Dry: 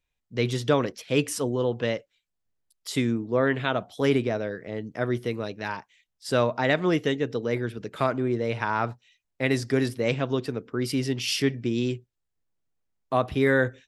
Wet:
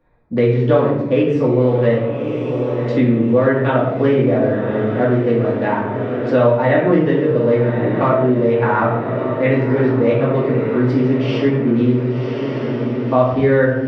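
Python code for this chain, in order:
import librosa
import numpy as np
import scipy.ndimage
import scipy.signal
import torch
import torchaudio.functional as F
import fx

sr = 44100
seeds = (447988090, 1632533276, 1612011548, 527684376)

y = fx.wiener(x, sr, points=15)
y = fx.highpass(y, sr, hz=210.0, slope=6)
y = fx.spacing_loss(y, sr, db_at_10k=44)
y = fx.echo_diffused(y, sr, ms=1127, feedback_pct=59, wet_db=-12.5)
y = fx.room_shoebox(y, sr, seeds[0], volume_m3=170.0, walls='mixed', distance_m=2.4)
y = fx.band_squash(y, sr, depth_pct=70)
y = F.gain(torch.from_numpy(y), 5.0).numpy()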